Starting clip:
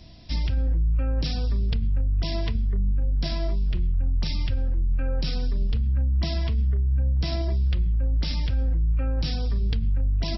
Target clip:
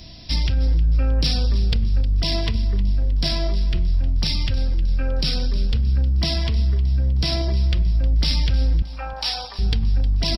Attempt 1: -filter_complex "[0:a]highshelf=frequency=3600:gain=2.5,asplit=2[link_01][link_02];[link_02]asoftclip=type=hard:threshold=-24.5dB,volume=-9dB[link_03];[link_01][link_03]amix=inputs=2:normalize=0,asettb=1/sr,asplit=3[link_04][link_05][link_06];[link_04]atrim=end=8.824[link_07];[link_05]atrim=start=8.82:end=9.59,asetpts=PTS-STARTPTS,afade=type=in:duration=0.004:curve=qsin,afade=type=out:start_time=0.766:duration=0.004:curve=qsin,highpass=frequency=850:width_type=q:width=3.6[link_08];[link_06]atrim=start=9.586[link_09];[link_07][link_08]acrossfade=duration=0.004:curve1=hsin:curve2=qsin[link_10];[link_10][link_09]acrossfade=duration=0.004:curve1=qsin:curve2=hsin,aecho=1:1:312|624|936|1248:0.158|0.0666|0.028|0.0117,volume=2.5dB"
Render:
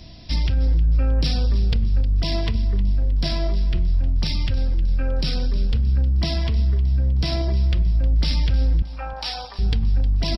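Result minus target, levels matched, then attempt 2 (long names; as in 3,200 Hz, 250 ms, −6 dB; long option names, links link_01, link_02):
8,000 Hz band −5.0 dB
-filter_complex "[0:a]highshelf=frequency=3600:gain=10.5,asplit=2[link_01][link_02];[link_02]asoftclip=type=hard:threshold=-24.5dB,volume=-9dB[link_03];[link_01][link_03]amix=inputs=2:normalize=0,asettb=1/sr,asplit=3[link_04][link_05][link_06];[link_04]atrim=end=8.824[link_07];[link_05]atrim=start=8.82:end=9.59,asetpts=PTS-STARTPTS,afade=type=in:duration=0.004:curve=qsin,afade=type=out:start_time=0.766:duration=0.004:curve=qsin,highpass=frequency=850:width_type=q:width=3.6[link_08];[link_06]atrim=start=9.586[link_09];[link_07][link_08]acrossfade=duration=0.004:curve1=hsin:curve2=qsin[link_10];[link_10][link_09]acrossfade=duration=0.004:curve1=qsin:curve2=hsin,aecho=1:1:312|624|936|1248:0.158|0.0666|0.028|0.0117,volume=2.5dB"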